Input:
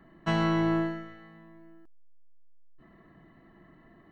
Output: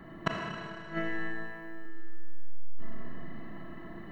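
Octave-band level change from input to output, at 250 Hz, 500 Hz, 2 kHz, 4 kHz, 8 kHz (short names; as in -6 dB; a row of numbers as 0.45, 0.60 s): -9.5 dB, -6.5 dB, +1.0 dB, -3.5 dB, n/a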